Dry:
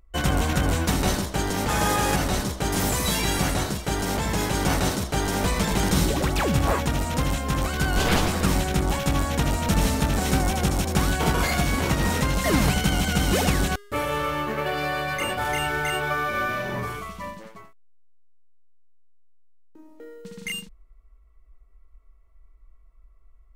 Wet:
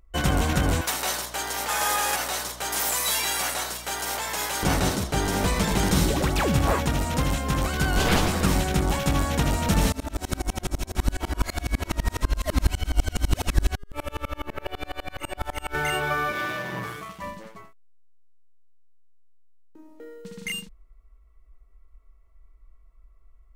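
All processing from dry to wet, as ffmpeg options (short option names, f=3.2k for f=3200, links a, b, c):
-filter_complex "[0:a]asettb=1/sr,asplit=3[a][b][c];[a]atrim=end=0.814[d];[b]atrim=start=0.81:end=4.63,asetpts=PTS-STARTPTS,afade=t=in:d=0.004:c=qsin,afade=t=out:st=3.816:d=0.004:c=qsin,highpass=690,highshelf=f=11k:g=8,aeval=exprs='val(0)+0.00562*(sin(2*PI*60*n/s)+sin(2*PI*2*60*n/s)/2+sin(2*PI*3*60*n/s)/3+sin(2*PI*4*60*n/s)/4+sin(2*PI*5*60*n/s)/5)':c=same[e];[c]atrim=start=4.626[f];[d][e]acrossfade=d=0.004:c1=hsin:c2=qsin[g];[g][f]acrossfade=d=0.004:c1=qsin:c2=hsin,asettb=1/sr,asplit=3[h][i][j];[h]atrim=end=9.924[k];[i]atrim=start=9.92:end=15.75,asetpts=PTS-STARTPTS,afade=t=in:d=0.004:c=qsin,afade=t=out:st=5.826:d=0.004:c=qsin,asubboost=boost=9:cutoff=51,aecho=1:1:3.1:0.51,atrim=end_sample=257103,aeval=exprs='val(0)*pow(10,-33*if(lt(mod(-12*n/s,1),2*abs(-12)/1000),1-mod(-12*n/s,1)/(2*abs(-12)/1000),(mod(-12*n/s,1)-2*abs(-12)/1000)/(1-2*abs(-12)/1000))/20)':c=same[l];[j]atrim=start=15.746[m];[k][l]acrossfade=d=0.004:c1=hsin:c2=qsin[n];[n][m]acrossfade=d=0.004:c1=qsin:c2=hsin,asettb=1/sr,asplit=3[o][p][q];[o]atrim=end=16.324[r];[p]atrim=start=16.32:end=17.22,asetpts=PTS-STARTPTS,afade=t=in:d=0.004:c=qsin,afade=t=out:st=0.896:d=0.004:c=qsin,aeval=exprs='if(lt(val(0),0),0.251*val(0),val(0))':c=same,highpass=76,aecho=1:1:6.2:0.53,atrim=end_sample=39690[s];[q]atrim=start=17.216[t];[r][s]acrossfade=d=0.004:c1=hsin:c2=qsin[u];[u][t]acrossfade=d=0.004:c1=qsin:c2=hsin"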